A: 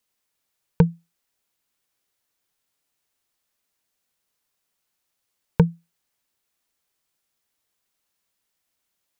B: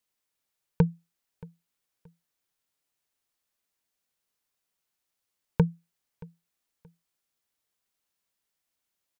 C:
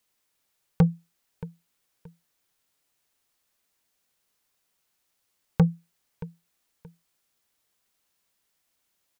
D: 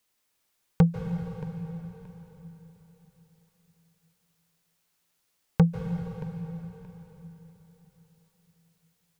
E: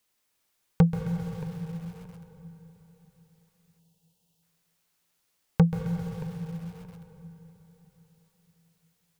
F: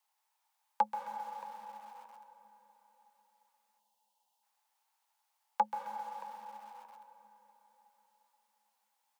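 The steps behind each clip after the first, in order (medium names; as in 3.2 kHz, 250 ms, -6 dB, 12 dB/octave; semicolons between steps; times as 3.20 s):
feedback delay 626 ms, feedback 28%, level -23 dB; trim -5.5 dB
saturation -19.5 dBFS, distortion -9 dB; trim +7.5 dB
reverberation RT60 4.0 s, pre-delay 136 ms, DRR 4.5 dB
time-frequency box 3.79–4.43 s, 1–2.6 kHz -13 dB; bit-crushed delay 132 ms, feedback 55%, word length 7-bit, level -12 dB
resonant high-pass 810 Hz, resonance Q 10; frequency shift +45 Hz; trim -7.5 dB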